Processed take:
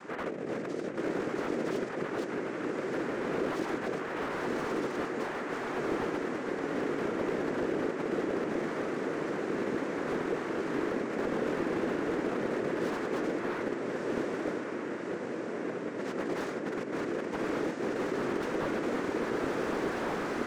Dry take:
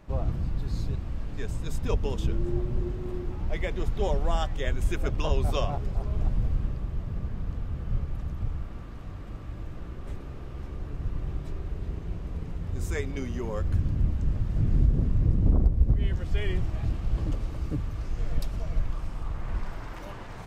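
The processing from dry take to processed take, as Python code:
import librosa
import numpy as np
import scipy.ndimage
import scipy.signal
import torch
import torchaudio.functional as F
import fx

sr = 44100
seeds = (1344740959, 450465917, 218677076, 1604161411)

p1 = fx.schmitt(x, sr, flips_db=-28.0)
p2 = x + F.gain(torch.from_numpy(p1), -10.5).numpy()
p3 = fx.tilt_shelf(p2, sr, db=4.0, hz=1200.0)
p4 = fx.notch_comb(p3, sr, f0_hz=900.0)
p5 = fx.noise_vocoder(p4, sr, seeds[0], bands=3)
p6 = fx.over_compress(p5, sr, threshold_db=-37.0, ratio=-1.0)
p7 = scipy.signal.sosfilt(scipy.signal.butter(2, 350.0, 'highpass', fs=sr, output='sos'), p6)
p8 = fx.air_absorb(p7, sr, metres=58.0)
p9 = fx.echo_diffused(p8, sr, ms=1264, feedback_pct=62, wet_db=-5.5)
p10 = fx.slew_limit(p9, sr, full_power_hz=12.0)
y = F.gain(torch.from_numpy(p10), 6.5).numpy()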